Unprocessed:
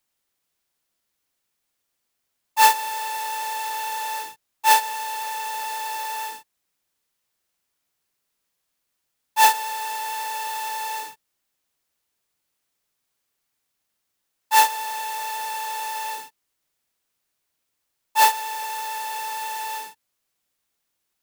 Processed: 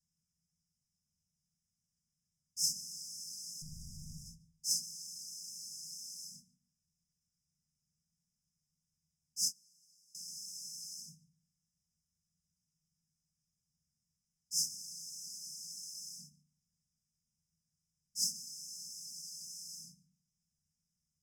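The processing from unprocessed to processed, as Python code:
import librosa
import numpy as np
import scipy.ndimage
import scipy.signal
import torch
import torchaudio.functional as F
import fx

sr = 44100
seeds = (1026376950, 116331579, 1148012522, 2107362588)

y = fx.low_shelf(x, sr, hz=350.0, db=-9.5)
y = fx.small_body(y, sr, hz=(380.0, 940.0), ring_ms=45, db=7)
y = fx.clip_hard(y, sr, threshold_db=-36.5, at=(3.62, 4.26))
y = fx.brickwall_bandstop(y, sr, low_hz=220.0, high_hz=4900.0)
y = fx.spacing_loss(y, sr, db_at_10k=23)
y = y + 10.0 ** (-24.0 / 20.0) * np.pad(y, (int(146 * sr / 1000.0), 0))[:len(y)]
y = fx.rev_fdn(y, sr, rt60_s=0.53, lf_ratio=1.4, hf_ratio=0.35, size_ms=37.0, drr_db=0.0)
y = fx.upward_expand(y, sr, threshold_db=-55.0, expansion=2.5, at=(9.45, 10.15))
y = F.gain(torch.from_numpy(y), 9.5).numpy()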